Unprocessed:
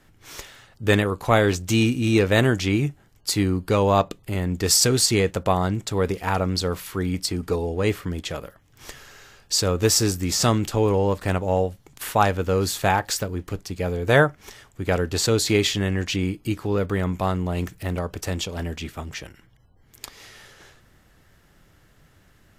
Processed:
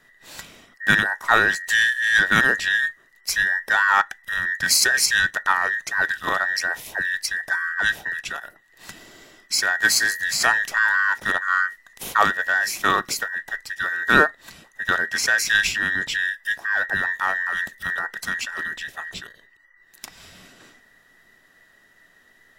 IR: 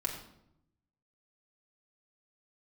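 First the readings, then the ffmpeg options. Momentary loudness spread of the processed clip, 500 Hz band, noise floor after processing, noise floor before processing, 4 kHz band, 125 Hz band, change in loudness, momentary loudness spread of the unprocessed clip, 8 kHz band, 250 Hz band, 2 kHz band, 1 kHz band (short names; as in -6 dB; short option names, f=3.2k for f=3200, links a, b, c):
11 LU, -11.0 dB, -57 dBFS, -57 dBFS, +1.0 dB, -17.5 dB, +2.0 dB, 14 LU, -0.5 dB, -12.0 dB, +12.5 dB, +2.5 dB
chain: -af "afftfilt=real='real(if(between(b,1,1012),(2*floor((b-1)/92)+1)*92-b,b),0)':imag='imag(if(between(b,1,1012),(2*floor((b-1)/92)+1)*92-b,b),0)*if(between(b,1,1012),-1,1)':win_size=2048:overlap=0.75,aeval=exprs='0.75*(cos(1*acos(clip(val(0)/0.75,-1,1)))-cos(1*PI/2))+0.0168*(cos(7*acos(clip(val(0)/0.75,-1,1)))-cos(7*PI/2))':c=same,volume=1dB"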